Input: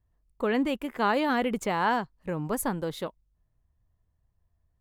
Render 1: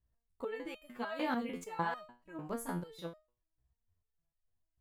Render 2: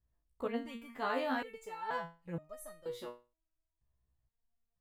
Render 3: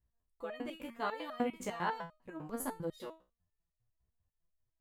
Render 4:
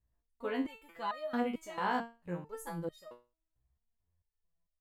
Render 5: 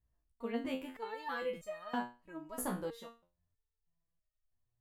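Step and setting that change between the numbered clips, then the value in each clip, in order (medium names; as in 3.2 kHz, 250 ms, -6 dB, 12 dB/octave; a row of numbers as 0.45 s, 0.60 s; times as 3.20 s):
resonator arpeggio, rate: 6.7 Hz, 2.1 Hz, 10 Hz, 4.5 Hz, 3.1 Hz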